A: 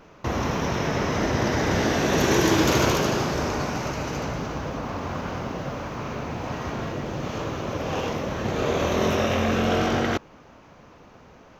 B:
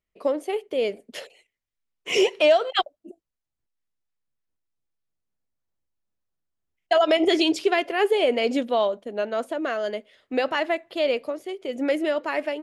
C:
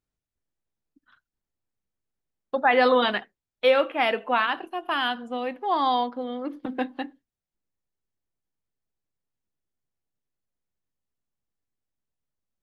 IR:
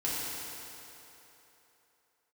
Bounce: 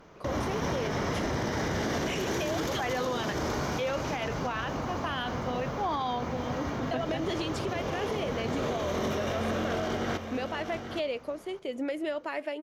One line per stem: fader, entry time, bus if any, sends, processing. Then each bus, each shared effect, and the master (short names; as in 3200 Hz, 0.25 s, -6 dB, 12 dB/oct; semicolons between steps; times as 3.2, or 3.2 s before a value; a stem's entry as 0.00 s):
-3.5 dB, 0.00 s, no send, echo send -9.5 dB, limiter -16 dBFS, peak gain reduction 8 dB; one-sided clip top -21.5 dBFS, bottom -19 dBFS; notch 2600 Hz, Q 10
-3.5 dB, 0.00 s, no send, no echo send, compressor 4:1, threshold -26 dBFS, peak gain reduction 11 dB
-13.0 dB, 0.15 s, no send, no echo send, AGC gain up to 11.5 dB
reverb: off
echo: echo 0.824 s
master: limiter -22.5 dBFS, peak gain reduction 9.5 dB